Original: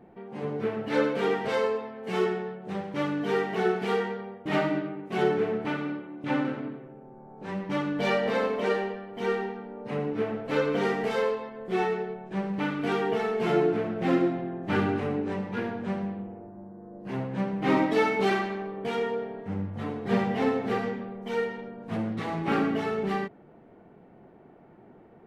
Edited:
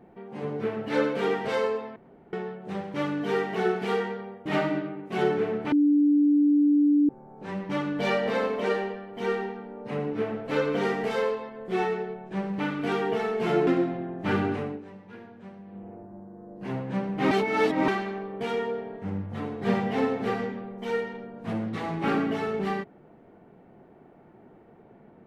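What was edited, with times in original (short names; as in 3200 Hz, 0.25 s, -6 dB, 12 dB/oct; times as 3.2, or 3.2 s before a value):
1.96–2.33 room tone
5.72–7.09 bleep 292 Hz -17 dBFS
13.67–14.11 cut
14.99–16.38 dip -14 dB, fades 0.29 s
17.75–18.32 reverse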